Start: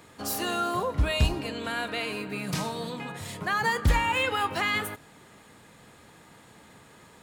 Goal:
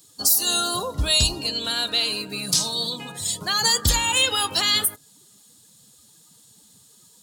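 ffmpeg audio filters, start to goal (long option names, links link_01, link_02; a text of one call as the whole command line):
ffmpeg -i in.wav -af "afftdn=noise_reduction=16:noise_floor=-42,aexciter=amount=8.3:drive=8.7:freq=3400,alimiter=limit=-7.5dB:level=0:latency=1:release=215" out.wav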